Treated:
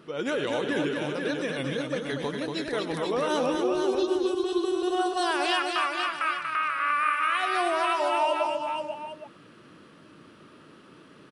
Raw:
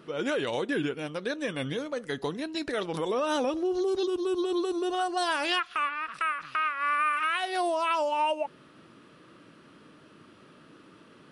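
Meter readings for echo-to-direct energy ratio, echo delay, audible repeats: −1.5 dB, 90 ms, 5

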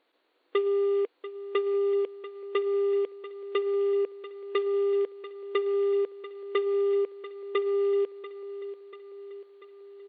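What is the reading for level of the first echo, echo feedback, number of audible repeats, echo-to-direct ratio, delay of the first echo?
−13.5 dB, 57%, 5, −12.0 dB, 689 ms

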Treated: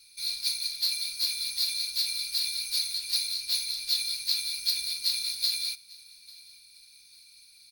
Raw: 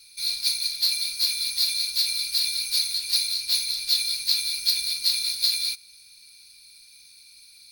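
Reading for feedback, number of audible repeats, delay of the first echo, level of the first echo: 38%, 2, 846 ms, −23.0 dB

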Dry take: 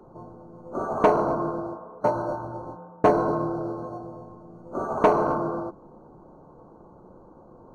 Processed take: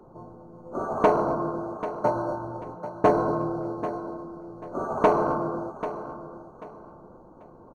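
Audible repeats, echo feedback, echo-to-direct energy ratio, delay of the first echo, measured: 3, 27%, −11.5 dB, 789 ms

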